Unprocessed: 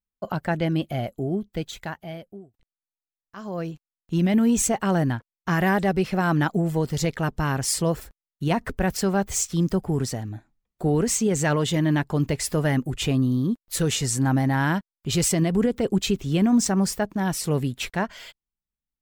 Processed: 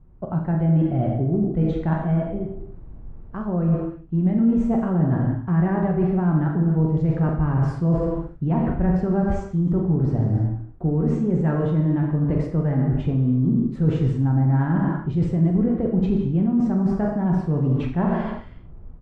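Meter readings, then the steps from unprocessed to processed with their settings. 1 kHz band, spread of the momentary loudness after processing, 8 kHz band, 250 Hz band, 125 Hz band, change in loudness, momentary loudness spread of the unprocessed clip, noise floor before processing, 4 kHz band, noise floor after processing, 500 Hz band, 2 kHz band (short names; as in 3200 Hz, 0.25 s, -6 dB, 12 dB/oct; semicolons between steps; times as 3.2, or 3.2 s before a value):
-2.5 dB, 5 LU, under -30 dB, +3.5 dB, +6.0 dB, +2.5 dB, 11 LU, under -85 dBFS, under -20 dB, -40 dBFS, 0.0 dB, -9.5 dB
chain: added noise brown -56 dBFS; AGC gain up to 9 dB; non-linear reverb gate 0.38 s falling, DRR 1.5 dB; in parallel at -10 dB: soft clip -12.5 dBFS, distortion -9 dB; on the sum: LPF 1000 Hz 12 dB/oct; bell 530 Hz -4 dB 0.83 oct; reverse; compressor 6:1, threshold -22 dBFS, peak gain reduction 17.5 dB; reverse; low shelf 360 Hz +7.5 dB; early reflections 44 ms -9.5 dB, 79 ms -15.5 dB; gain -2 dB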